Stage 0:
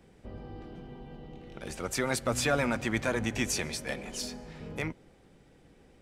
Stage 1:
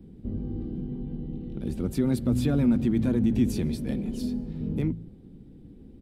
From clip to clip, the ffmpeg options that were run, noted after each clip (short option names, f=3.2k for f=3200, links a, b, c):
-filter_complex "[0:a]firequalizer=gain_entry='entry(150,0);entry(220,4);entry(580,-18);entry(1200,-23);entry(2000,-25);entry(3700,-17);entry(6100,-27);entry(12000,-15)':delay=0.05:min_phase=1,asplit=2[a][b];[b]alimiter=level_in=7.5dB:limit=-24dB:level=0:latency=1:release=21,volume=-7.5dB,volume=1.5dB[c];[a][c]amix=inputs=2:normalize=0,bandreject=f=54.87:t=h:w=4,bandreject=f=109.74:t=h:w=4,bandreject=f=164.61:t=h:w=4,bandreject=f=219.48:t=h:w=4,volume=5.5dB"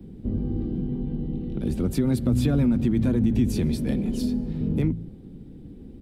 -filter_complex "[0:a]acrossover=split=130[a][b];[b]acompressor=threshold=-28dB:ratio=2.5[c];[a][c]amix=inputs=2:normalize=0,volume=5.5dB"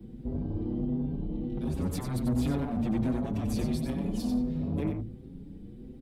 -filter_complex "[0:a]asoftclip=type=tanh:threshold=-23.5dB,aecho=1:1:93:0.473,asplit=2[a][b];[b]adelay=6.3,afreqshift=1.4[c];[a][c]amix=inputs=2:normalize=1"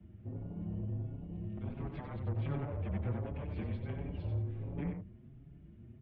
-af "highpass=f=230:t=q:w=0.5412,highpass=f=230:t=q:w=1.307,lowpass=f=3k:t=q:w=0.5176,lowpass=f=3k:t=q:w=0.7071,lowpass=f=3k:t=q:w=1.932,afreqshift=-140,volume=-4dB"